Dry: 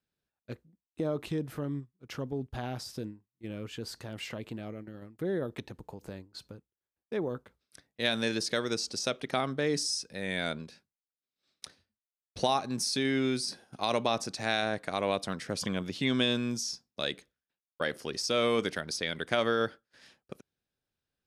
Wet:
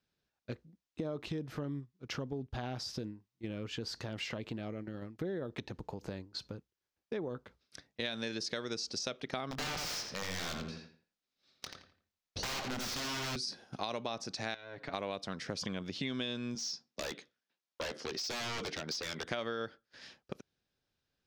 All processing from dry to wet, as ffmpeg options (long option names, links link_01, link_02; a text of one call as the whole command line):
ffmpeg -i in.wav -filter_complex "[0:a]asettb=1/sr,asplit=3[link_01][link_02][link_03];[link_01]atrim=end=9.514[link_04];[link_02]atrim=start=9.51:end=13.36,asetpts=PTS-STARTPTS,afade=type=in:duration=0.004:curve=qsin,afade=type=out:start_time=3.846:duration=0.004:curve=qsin,aeval=exprs='(mod(28.2*val(0)+1,2)-1)/28.2':channel_layout=same,asplit=2[link_05][link_06];[link_06]adelay=23,volume=-12dB[link_07];[link_05][link_07]amix=inputs=2:normalize=0,atrim=end_sample=169785,asplit=2[link_08][link_09];[link_09]adelay=85,lowpass=frequency=3300:poles=1,volume=-3.5dB,asplit=2[link_10][link_11];[link_11]adelay=85,lowpass=frequency=3300:poles=1,volume=0.33,asplit=2[link_12][link_13];[link_13]adelay=85,lowpass=frequency=3300:poles=1,volume=0.33,asplit=2[link_14][link_15];[link_15]adelay=85,lowpass=frequency=3300:poles=1,volume=0.33[link_16];[link_08][link_10][link_12][link_14][link_16]amix=inputs=5:normalize=0,atrim=end_sample=169785[link_17];[link_03]atrim=start=13.356[link_18];[link_04][link_17]acrossfade=duration=0.004:curve1=hsin:curve2=qsin[link_19];[link_19][link_18]acrossfade=duration=0.004:curve1=qsin:curve2=hsin,asettb=1/sr,asplit=3[link_20][link_21][link_22];[link_20]atrim=end=14.544[link_23];[link_21]atrim=start=14.54:end=14.94,asetpts=PTS-STARTPTS,afade=type=in:duration=0.004:curve=qsin,afade=type=out:start_time=0.396:duration=0.004:curve=qsin,lowpass=3700,acompressor=threshold=-44dB:ratio=4:attack=3.2:release=140:knee=1:detection=peak,aecho=1:1:7.2:0.85,atrim=end_sample=17640[link_24];[link_22]atrim=start=14.936[link_25];[link_23][link_24]acrossfade=duration=0.004:curve1=hsin:curve2=qsin[link_26];[link_26][link_25]acrossfade=duration=0.004:curve1=qsin:curve2=hsin,asettb=1/sr,asplit=3[link_27][link_28][link_29];[link_27]atrim=end=16.554[link_30];[link_28]atrim=start=16.55:end=19.24,asetpts=PTS-STARTPTS,afade=type=in:duration=0.004:curve=qsin,afade=type=out:start_time=2.686:duration=0.004:curve=qsin,highpass=170,lowpass=7300,aeval=exprs='0.0251*(abs(mod(val(0)/0.0251+3,4)-2)-1)':channel_layout=same,asplit=2[link_31][link_32];[link_32]adelay=13,volume=-13.5dB[link_33];[link_31][link_33]amix=inputs=2:normalize=0,atrim=end_sample=118629[link_34];[link_29]atrim=start=19.236[link_35];[link_30][link_34]acrossfade=duration=0.004:curve1=hsin:curve2=qsin[link_36];[link_36][link_35]acrossfade=duration=0.004:curve1=qsin:curve2=hsin,highshelf=frequency=7400:width_type=q:width=1.5:gain=-9,acompressor=threshold=-40dB:ratio=4,volume=3.5dB" out.wav